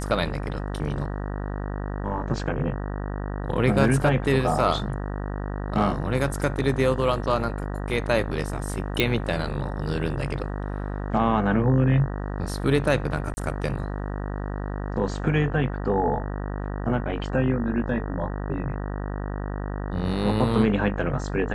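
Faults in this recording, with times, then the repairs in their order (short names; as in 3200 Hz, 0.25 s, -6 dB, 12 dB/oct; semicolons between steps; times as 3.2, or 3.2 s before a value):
buzz 50 Hz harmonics 38 -30 dBFS
9 pop
13.34–13.37 gap 30 ms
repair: de-click; de-hum 50 Hz, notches 38; interpolate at 13.34, 30 ms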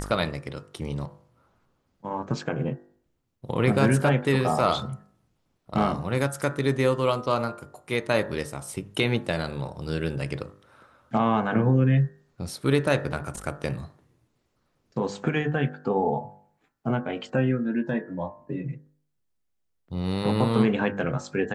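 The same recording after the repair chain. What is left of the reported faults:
none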